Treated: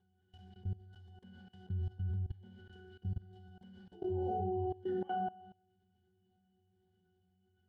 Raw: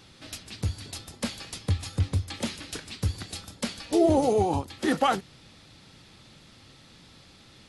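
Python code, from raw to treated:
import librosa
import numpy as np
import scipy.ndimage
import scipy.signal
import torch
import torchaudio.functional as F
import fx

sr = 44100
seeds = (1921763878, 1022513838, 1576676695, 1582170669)

y = fx.octave_resonator(x, sr, note='F#', decay_s=0.54)
y = fx.rev_schroeder(y, sr, rt60_s=0.73, comb_ms=31, drr_db=0.0)
y = fx.level_steps(y, sr, step_db=20)
y = y * librosa.db_to_amplitude(5.0)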